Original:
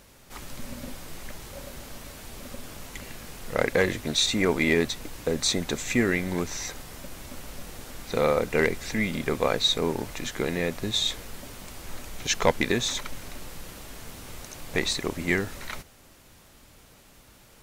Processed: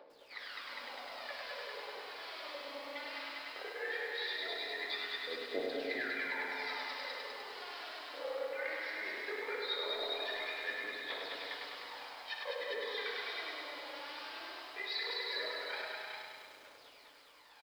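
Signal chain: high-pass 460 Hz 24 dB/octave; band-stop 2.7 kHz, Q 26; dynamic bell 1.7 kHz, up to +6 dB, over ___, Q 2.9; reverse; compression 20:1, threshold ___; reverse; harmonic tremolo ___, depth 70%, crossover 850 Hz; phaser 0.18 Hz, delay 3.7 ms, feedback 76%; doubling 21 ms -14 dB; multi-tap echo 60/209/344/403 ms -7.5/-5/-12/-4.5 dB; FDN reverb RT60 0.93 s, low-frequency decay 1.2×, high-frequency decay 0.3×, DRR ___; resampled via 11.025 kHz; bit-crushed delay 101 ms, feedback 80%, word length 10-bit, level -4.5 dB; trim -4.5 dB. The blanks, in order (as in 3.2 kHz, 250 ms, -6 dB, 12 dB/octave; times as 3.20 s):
-43 dBFS, -36 dBFS, 1.1 Hz, 6 dB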